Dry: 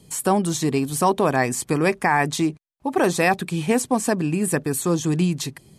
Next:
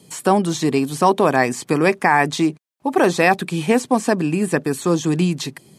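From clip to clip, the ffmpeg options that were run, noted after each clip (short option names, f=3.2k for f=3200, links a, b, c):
-filter_complex "[0:a]highpass=160,acrossover=split=5800[a][b];[b]acompressor=threshold=-39dB:ratio=4:attack=1:release=60[c];[a][c]amix=inputs=2:normalize=0,volume=4dB"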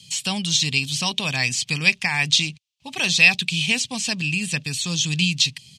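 -af "firequalizer=gain_entry='entry(100,0);entry(340,-28);entry(510,-23);entry(900,-19);entry(1400,-19);entry(2700,9);entry(6000,5);entry(11000,-10)':delay=0.05:min_phase=1,volume=4dB"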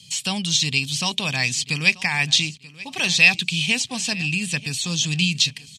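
-af "aecho=1:1:935|1870:0.106|0.0307"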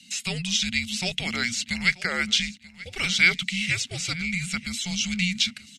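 -af "afreqshift=-360,volume=-4.5dB"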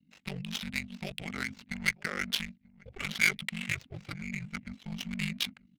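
-af "adynamicsmooth=sensitivity=2:basefreq=570,aeval=exprs='val(0)*sin(2*PI*24*n/s)':c=same,volume=-4.5dB"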